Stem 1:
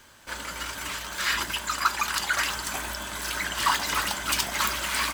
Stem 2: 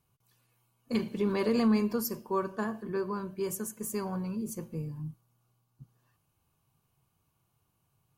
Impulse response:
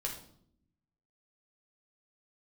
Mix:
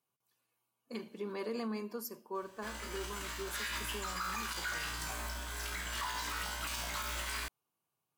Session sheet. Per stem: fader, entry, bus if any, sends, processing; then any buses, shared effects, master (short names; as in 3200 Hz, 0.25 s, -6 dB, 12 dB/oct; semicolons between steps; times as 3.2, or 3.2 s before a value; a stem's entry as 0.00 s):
+0.5 dB, 2.35 s, no send, resonator 59 Hz, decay 0.71 s, harmonics all, mix 90%; modulation noise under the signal 18 dB
-8.5 dB, 0.00 s, no send, HPF 280 Hz 12 dB/oct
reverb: off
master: limiter -28.5 dBFS, peak gain reduction 8 dB